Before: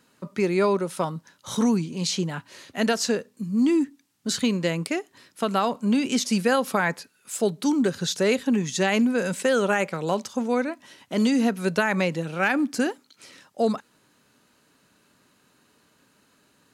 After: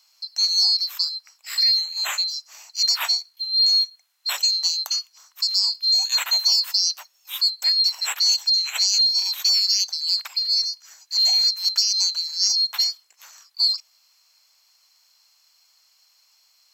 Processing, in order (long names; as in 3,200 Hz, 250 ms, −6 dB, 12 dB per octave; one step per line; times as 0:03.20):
neighbouring bands swapped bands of 4,000 Hz
high-pass filter 800 Hz 24 dB per octave
level +2 dB